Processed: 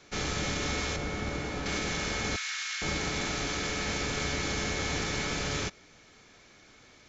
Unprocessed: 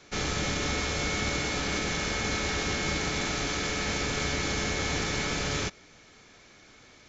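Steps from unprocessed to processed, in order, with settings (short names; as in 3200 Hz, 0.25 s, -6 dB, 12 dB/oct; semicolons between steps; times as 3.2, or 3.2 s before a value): 0.96–1.66 high shelf 2100 Hz -10.5 dB; 2.36–2.82 HPF 1400 Hz 24 dB/oct; gain -2 dB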